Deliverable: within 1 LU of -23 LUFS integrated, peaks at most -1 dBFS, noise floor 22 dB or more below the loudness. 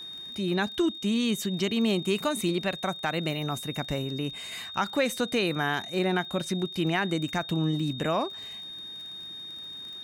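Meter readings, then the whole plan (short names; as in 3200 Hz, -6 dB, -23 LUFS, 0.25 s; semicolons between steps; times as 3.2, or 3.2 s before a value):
ticks 31/s; steady tone 3700 Hz; tone level -38 dBFS; loudness -29.0 LUFS; peak -14.0 dBFS; loudness target -23.0 LUFS
-> de-click; notch 3700 Hz, Q 30; gain +6 dB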